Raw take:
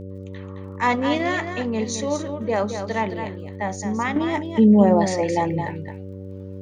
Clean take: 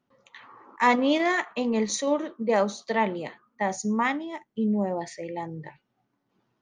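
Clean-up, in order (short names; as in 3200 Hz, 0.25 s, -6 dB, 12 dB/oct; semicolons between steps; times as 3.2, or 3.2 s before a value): de-click; de-hum 95.8 Hz, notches 6; inverse comb 0.217 s -8 dB; gain correction -11.5 dB, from 4.16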